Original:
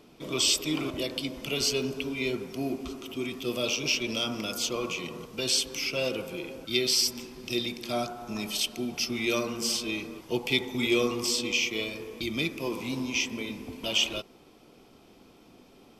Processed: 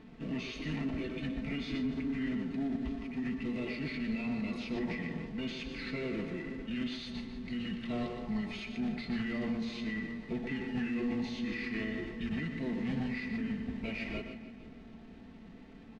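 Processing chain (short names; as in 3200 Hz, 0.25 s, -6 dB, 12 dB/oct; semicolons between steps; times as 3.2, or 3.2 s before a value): limiter -23 dBFS, peak gain reduction 10 dB; companded quantiser 4-bit; comb 4.5 ms, depth 50%; split-band echo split 410 Hz, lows 0.509 s, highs 0.153 s, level -14 dB; soft clip -26.5 dBFS, distortion -15 dB; LPF 3500 Hz 12 dB/oct; echo 0.12 s -8.5 dB; formant shift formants -4 st; low shelf 240 Hz +10.5 dB; notch 980 Hz, Q 11; gain -5.5 dB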